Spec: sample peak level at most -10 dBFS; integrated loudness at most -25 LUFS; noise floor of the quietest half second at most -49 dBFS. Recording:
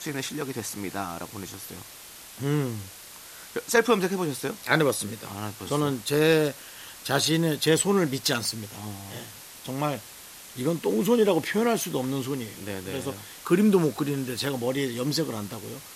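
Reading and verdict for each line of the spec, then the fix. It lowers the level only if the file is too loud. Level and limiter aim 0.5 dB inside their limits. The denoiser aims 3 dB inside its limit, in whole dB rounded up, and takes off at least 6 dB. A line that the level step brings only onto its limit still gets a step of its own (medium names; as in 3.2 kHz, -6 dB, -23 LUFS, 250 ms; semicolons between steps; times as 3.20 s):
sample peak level -5.5 dBFS: fail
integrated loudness -26.5 LUFS: pass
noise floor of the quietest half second -45 dBFS: fail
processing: noise reduction 7 dB, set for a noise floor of -45 dBFS; peak limiter -10.5 dBFS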